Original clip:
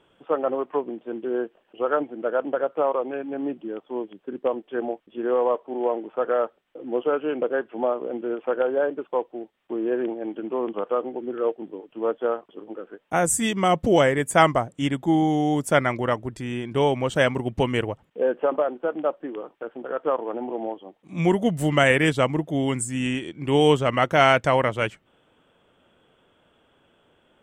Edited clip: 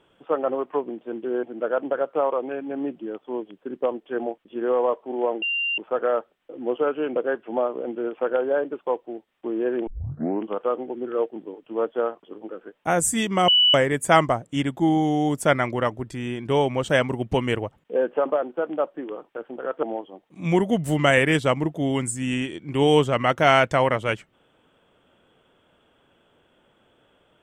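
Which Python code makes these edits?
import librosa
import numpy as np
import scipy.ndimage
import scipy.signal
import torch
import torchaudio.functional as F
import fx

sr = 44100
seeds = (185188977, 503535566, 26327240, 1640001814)

y = fx.edit(x, sr, fx.cut(start_s=1.43, length_s=0.62),
    fx.insert_tone(at_s=6.04, length_s=0.36, hz=2780.0, db=-22.0),
    fx.tape_start(start_s=10.13, length_s=0.59),
    fx.bleep(start_s=13.74, length_s=0.26, hz=2960.0, db=-13.5),
    fx.cut(start_s=20.09, length_s=0.47), tone=tone)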